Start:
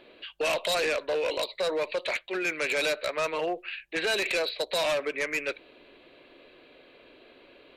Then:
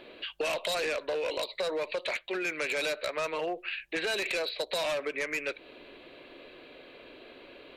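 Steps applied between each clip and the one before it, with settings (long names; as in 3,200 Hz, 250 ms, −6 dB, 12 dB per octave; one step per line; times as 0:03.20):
downward compressor 3 to 1, threshold −36 dBFS, peak gain reduction 8.5 dB
level +4 dB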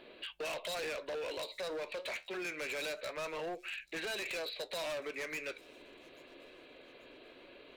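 flanger 0.26 Hz, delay 4.4 ms, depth 9.8 ms, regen −71%
hard clipping −35.5 dBFS, distortion −12 dB
delay with a high-pass on its return 835 ms, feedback 43%, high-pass 4,700 Hz, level −20 dB
level −1 dB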